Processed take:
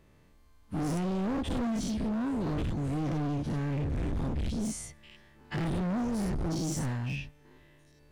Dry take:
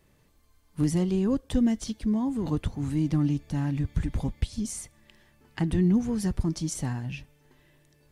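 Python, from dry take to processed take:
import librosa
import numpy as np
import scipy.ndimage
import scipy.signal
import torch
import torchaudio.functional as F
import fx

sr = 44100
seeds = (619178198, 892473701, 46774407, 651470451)

y = fx.spec_dilate(x, sr, span_ms=120)
y = fx.high_shelf(y, sr, hz=4800.0, db=-9.5)
y = np.clip(10.0 ** (27.0 / 20.0) * y, -1.0, 1.0) / 10.0 ** (27.0 / 20.0)
y = F.gain(torch.from_numpy(y), -2.0).numpy()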